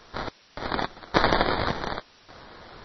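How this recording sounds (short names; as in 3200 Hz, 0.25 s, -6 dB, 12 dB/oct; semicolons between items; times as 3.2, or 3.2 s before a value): aliases and images of a low sample rate 2700 Hz, jitter 0%; random-step tremolo, depth 100%; a quantiser's noise floor 10-bit, dither triangular; MP3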